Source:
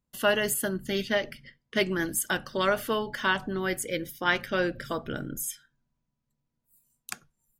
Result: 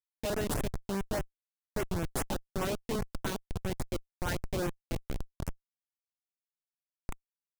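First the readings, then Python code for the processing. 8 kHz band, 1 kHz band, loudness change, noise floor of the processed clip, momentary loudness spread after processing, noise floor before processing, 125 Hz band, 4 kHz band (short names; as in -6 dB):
-9.0 dB, -9.0 dB, -8.0 dB, under -85 dBFS, 10 LU, -82 dBFS, +1.5 dB, -11.0 dB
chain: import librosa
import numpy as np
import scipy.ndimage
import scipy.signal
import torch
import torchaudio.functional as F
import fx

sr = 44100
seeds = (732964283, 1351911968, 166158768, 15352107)

y = fx.schmitt(x, sr, flips_db=-24.0)
y = fx.filter_lfo_notch(y, sr, shape='saw_up', hz=4.9, low_hz=860.0, high_hz=5100.0, q=1.4)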